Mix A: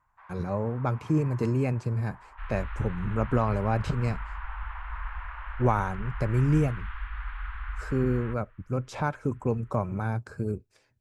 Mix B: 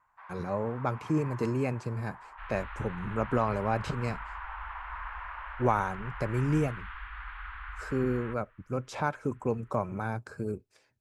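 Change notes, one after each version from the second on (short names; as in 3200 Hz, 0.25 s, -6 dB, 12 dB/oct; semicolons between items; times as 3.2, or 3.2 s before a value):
first sound +3.0 dB; master: add low shelf 150 Hz -10.5 dB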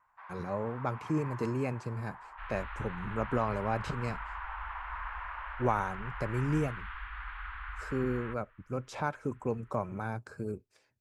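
speech -3.0 dB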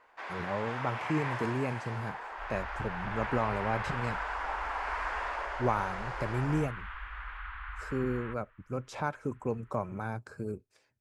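first sound: remove ladder band-pass 1200 Hz, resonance 50%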